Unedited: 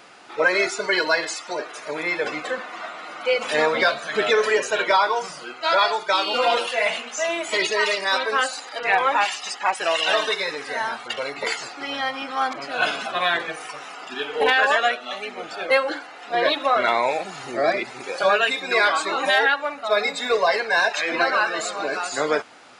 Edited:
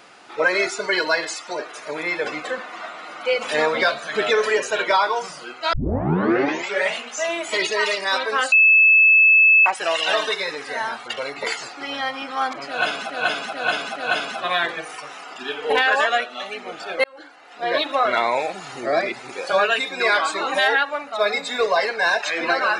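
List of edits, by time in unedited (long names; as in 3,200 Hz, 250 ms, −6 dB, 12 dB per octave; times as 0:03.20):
0:05.73: tape start 1.22 s
0:08.52–0:09.66: beep over 2,610 Hz −9.5 dBFS
0:12.67–0:13.10: repeat, 4 plays
0:15.75–0:16.57: fade in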